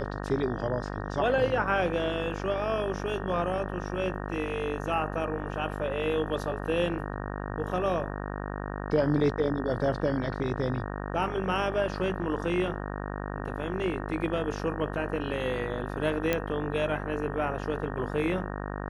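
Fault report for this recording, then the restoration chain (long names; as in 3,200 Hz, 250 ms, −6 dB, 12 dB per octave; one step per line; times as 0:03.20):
mains buzz 50 Hz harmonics 37 −35 dBFS
0:16.33: click −12 dBFS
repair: click removal
hum removal 50 Hz, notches 37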